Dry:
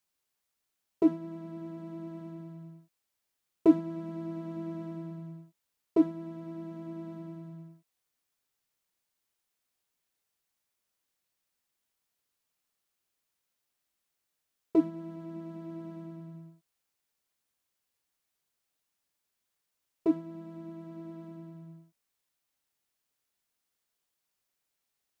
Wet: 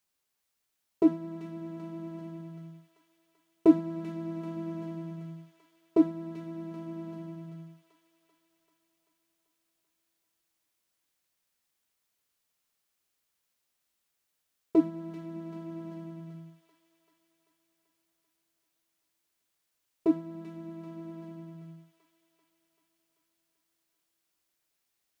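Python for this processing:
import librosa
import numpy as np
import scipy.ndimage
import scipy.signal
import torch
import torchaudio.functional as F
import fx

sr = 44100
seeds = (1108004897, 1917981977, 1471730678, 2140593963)

y = fx.echo_wet_highpass(x, sr, ms=388, feedback_pct=63, hz=1500.0, wet_db=-6.0)
y = F.gain(torch.from_numpy(y), 1.5).numpy()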